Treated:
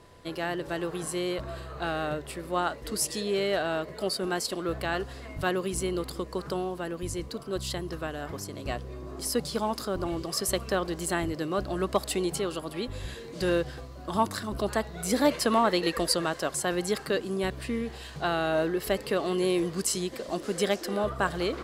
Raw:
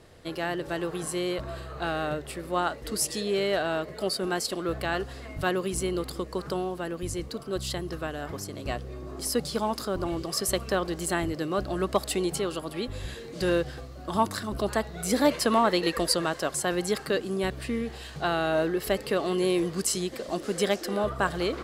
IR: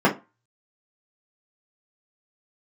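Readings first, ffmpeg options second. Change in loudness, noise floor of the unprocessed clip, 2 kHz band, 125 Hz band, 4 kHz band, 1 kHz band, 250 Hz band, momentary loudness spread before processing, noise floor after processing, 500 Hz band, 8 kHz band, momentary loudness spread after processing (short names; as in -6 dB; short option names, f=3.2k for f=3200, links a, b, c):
-1.0 dB, -42 dBFS, -1.0 dB, -1.0 dB, -1.0 dB, -1.0 dB, -1.0 dB, 9 LU, -43 dBFS, -1.0 dB, -1.0 dB, 9 LU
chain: -af "aeval=exprs='val(0)+0.00112*sin(2*PI*1000*n/s)':c=same,volume=-1dB"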